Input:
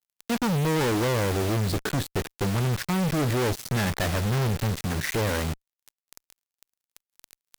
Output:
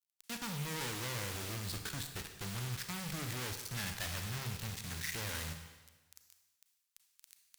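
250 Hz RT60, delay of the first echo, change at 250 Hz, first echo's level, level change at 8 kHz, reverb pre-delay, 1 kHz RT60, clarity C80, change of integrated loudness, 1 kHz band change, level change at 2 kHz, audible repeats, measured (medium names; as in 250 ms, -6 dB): 1.2 s, no echo, -18.5 dB, no echo, -6.5 dB, 31 ms, 1.3 s, 8.5 dB, -13.5 dB, -15.5 dB, -10.5 dB, no echo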